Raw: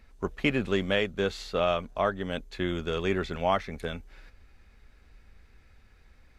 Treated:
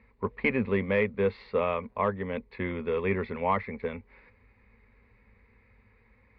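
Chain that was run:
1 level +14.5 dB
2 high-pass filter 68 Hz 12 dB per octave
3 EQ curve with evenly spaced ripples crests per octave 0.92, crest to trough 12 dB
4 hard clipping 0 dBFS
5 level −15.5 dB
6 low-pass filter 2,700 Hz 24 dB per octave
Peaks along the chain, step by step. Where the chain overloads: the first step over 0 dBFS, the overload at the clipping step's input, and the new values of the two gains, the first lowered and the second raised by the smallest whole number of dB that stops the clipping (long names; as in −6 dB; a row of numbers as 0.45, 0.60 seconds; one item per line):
+3.5, +3.5, +5.0, 0.0, −15.5, −14.0 dBFS
step 1, 5.0 dB
step 1 +9.5 dB, step 5 −10.5 dB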